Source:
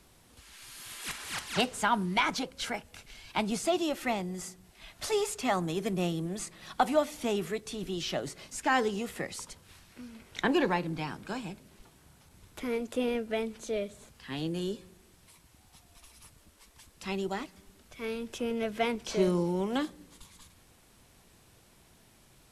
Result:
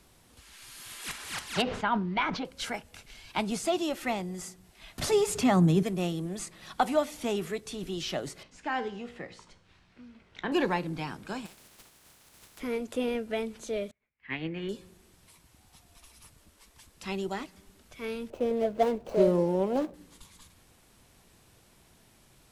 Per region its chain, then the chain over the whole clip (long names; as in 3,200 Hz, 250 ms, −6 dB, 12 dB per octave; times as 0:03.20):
0:01.62–0:02.45: high-frequency loss of the air 270 metres + level that may fall only so fast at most 72 dB per second
0:04.98–0:05.83: parametric band 160 Hz +14 dB 2 octaves + upward compression, threshold −24 dBFS
0:08.43–0:10.52: low-pass filter 3,900 Hz + tuned comb filter 60 Hz, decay 0.53 s
0:11.45–0:12.59: compressing power law on the bin magnitudes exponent 0.35 + downward compressor 12 to 1, threshold −47 dBFS
0:13.91–0:14.69: low-pass with resonance 2,200 Hz, resonance Q 7.8 + expander for the loud parts 2.5 to 1, over −54 dBFS
0:18.30–0:19.94: running median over 25 samples + parametric band 580 Hz +11 dB 0.74 octaves
whole clip: no processing